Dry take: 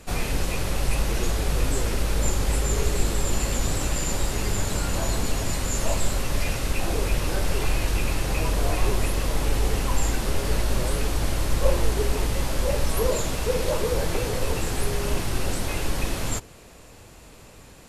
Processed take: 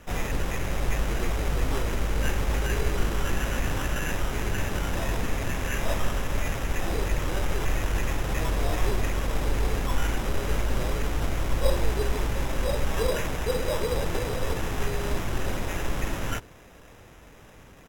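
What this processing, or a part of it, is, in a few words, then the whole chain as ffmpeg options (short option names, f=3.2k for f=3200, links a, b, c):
crushed at another speed: -af "asetrate=55125,aresample=44100,acrusher=samples=8:mix=1:aa=0.000001,asetrate=35280,aresample=44100,volume=-2.5dB"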